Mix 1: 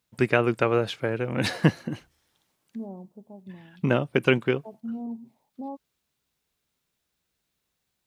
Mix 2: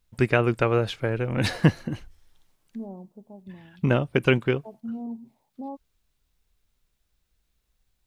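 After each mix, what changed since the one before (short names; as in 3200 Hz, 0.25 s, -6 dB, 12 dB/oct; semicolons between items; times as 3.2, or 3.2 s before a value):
first voice: remove HPF 140 Hz 12 dB/oct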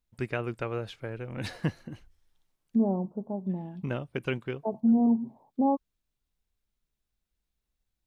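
first voice -11.0 dB; second voice +11.5 dB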